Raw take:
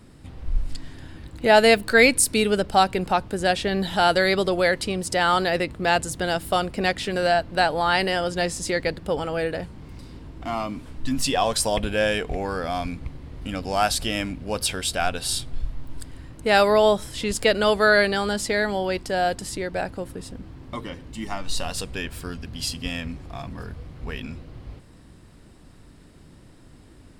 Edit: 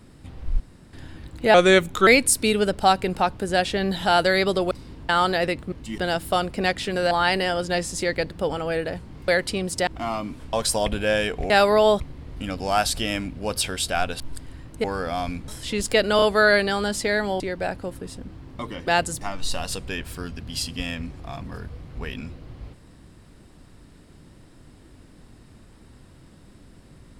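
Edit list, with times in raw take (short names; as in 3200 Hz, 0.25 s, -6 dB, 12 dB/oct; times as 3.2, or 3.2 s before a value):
0.6–0.93 room tone
1.54–1.98 speed 83%
4.62–5.21 swap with 9.95–10.33
5.84–6.18 swap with 21.01–21.27
7.31–7.78 cut
10.99–11.44 cut
12.41–13.05 swap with 16.49–16.99
15.25–15.85 cut
17.67 stutter 0.03 s, 3 plays
18.85–19.54 cut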